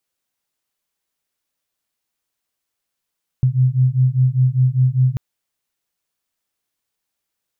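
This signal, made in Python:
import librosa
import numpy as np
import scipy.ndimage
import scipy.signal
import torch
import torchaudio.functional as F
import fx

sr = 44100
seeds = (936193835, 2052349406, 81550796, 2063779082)

y = fx.two_tone_beats(sr, length_s=1.74, hz=126.0, beat_hz=5.0, level_db=-15.5)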